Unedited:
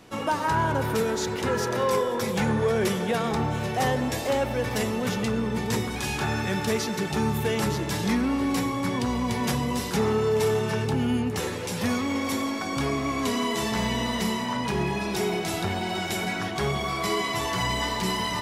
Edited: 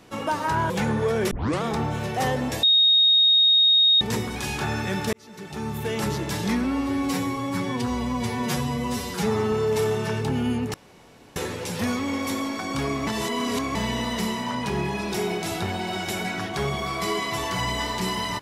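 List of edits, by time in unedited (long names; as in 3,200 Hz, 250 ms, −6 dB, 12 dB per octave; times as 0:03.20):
0:00.70–0:02.30: remove
0:02.91: tape start 0.31 s
0:04.23–0:05.61: beep over 3,730 Hz −14 dBFS
0:06.73–0:07.72: fade in
0:08.24–0:10.16: time-stretch 1.5×
0:11.38: splice in room tone 0.62 s
0:13.09–0:13.77: reverse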